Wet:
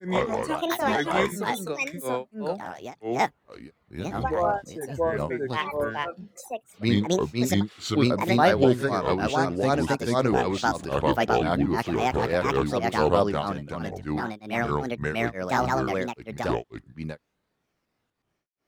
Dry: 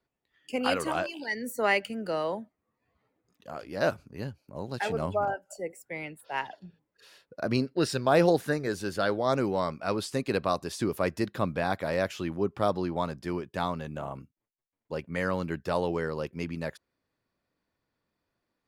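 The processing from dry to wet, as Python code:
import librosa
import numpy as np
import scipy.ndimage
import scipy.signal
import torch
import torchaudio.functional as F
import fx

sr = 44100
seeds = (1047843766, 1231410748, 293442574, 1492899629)

y = fx.granulator(x, sr, seeds[0], grain_ms=262.0, per_s=13.0, spray_ms=921.0, spread_st=7)
y = y * librosa.db_to_amplitude(8.5)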